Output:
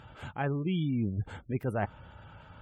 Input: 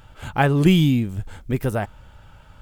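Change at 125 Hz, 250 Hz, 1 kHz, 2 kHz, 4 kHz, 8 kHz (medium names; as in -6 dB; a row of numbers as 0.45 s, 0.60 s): -12.0 dB, -12.5 dB, -12.0 dB, -13.0 dB, -17.5 dB, under -20 dB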